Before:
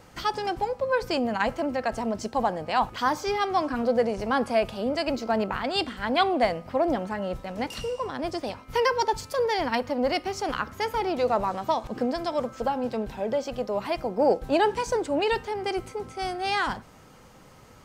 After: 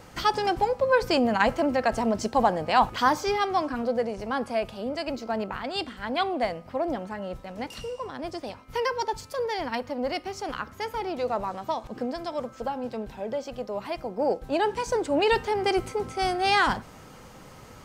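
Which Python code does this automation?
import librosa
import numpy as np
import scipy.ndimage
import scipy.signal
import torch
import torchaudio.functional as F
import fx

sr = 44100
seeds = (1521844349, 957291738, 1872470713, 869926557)

y = fx.gain(x, sr, db=fx.line((2.98, 3.5), (4.05, -4.0), (14.48, -4.0), (15.5, 4.5)))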